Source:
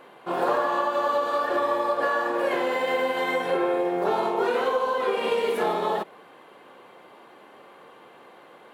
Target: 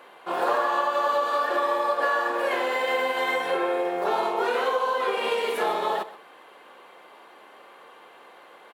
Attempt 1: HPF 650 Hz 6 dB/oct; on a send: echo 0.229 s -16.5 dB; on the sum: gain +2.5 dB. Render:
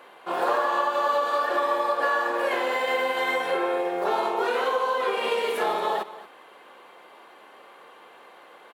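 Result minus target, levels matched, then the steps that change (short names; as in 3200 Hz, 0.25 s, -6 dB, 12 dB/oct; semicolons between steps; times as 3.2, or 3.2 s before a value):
echo 0.1 s late
change: echo 0.129 s -16.5 dB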